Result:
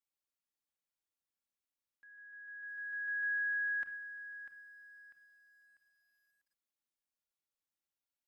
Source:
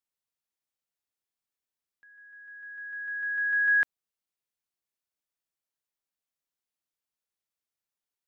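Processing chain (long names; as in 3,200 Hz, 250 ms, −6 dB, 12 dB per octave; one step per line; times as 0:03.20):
brickwall limiter −28.5 dBFS, peak gain reduction 10 dB
convolution reverb, pre-delay 4 ms, DRR 4 dB
feedback echo at a low word length 646 ms, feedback 35%, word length 11 bits, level −12 dB
level −6.5 dB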